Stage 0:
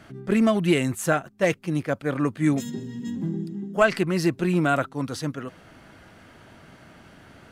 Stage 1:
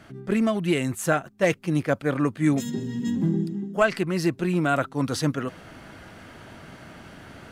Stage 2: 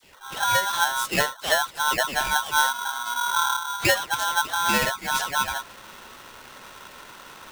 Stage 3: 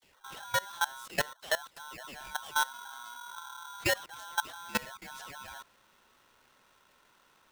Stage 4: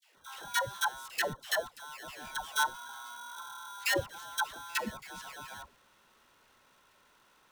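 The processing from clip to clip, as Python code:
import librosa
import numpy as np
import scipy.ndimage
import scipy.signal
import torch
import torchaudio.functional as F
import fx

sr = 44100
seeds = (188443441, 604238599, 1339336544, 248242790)

y1 = fx.rider(x, sr, range_db=5, speed_s=0.5)
y2 = fx.dispersion(y1, sr, late='lows', ms=135.0, hz=790.0)
y2 = y2 * np.sign(np.sin(2.0 * np.pi * 1200.0 * np.arange(len(y2)) / sr))
y3 = fx.level_steps(y2, sr, step_db=20)
y3 = y3 * 10.0 ** (-5.5 / 20.0)
y4 = fx.dispersion(y3, sr, late='lows', ms=135.0, hz=520.0)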